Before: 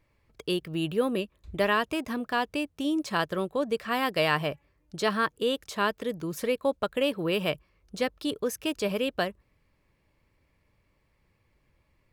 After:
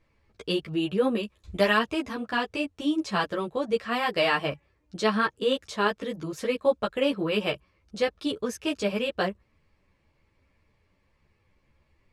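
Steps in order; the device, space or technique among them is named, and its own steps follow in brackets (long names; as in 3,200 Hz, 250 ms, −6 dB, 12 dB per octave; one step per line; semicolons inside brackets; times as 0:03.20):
string-machine ensemble chorus (string-ensemble chorus; low-pass filter 7,700 Hz 12 dB per octave)
0:01.23–0:01.79: high-shelf EQ 4,400 Hz +10.5 dB
level +4.5 dB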